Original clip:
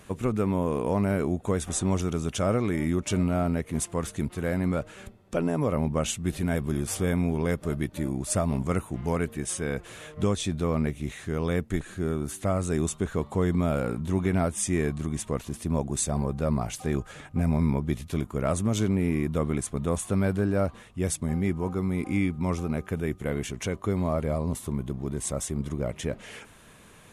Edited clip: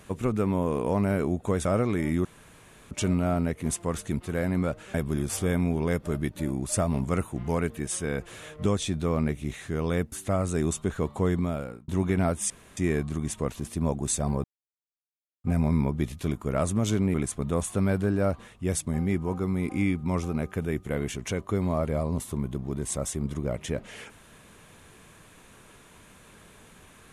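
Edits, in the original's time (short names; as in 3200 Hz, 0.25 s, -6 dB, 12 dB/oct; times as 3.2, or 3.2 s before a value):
1.65–2.4 cut
3 insert room tone 0.66 s
5.03–6.52 cut
11.7–12.28 cut
13.44–14.04 fade out
14.66 insert room tone 0.27 s
16.33–17.33 mute
19.03–19.49 cut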